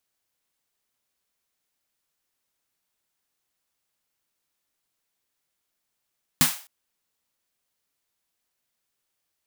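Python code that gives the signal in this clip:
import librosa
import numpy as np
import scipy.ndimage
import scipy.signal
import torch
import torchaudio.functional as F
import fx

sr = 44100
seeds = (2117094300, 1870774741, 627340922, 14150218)

y = fx.drum_snare(sr, seeds[0], length_s=0.26, hz=160.0, second_hz=250.0, noise_db=4.0, noise_from_hz=660.0, decay_s=0.15, noise_decay_s=0.39)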